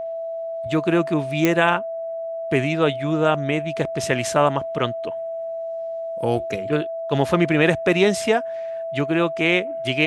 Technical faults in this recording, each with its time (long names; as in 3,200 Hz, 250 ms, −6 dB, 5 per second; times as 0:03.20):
whistle 660 Hz −26 dBFS
0:01.45: click −4 dBFS